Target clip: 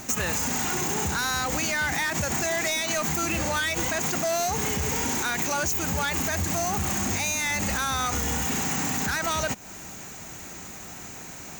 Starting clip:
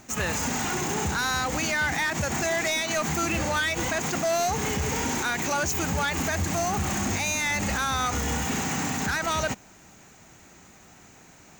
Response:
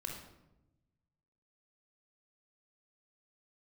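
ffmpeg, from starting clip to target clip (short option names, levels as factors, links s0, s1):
-af "highshelf=f=7300:g=8,acompressor=threshold=0.02:ratio=6,volume=2.82"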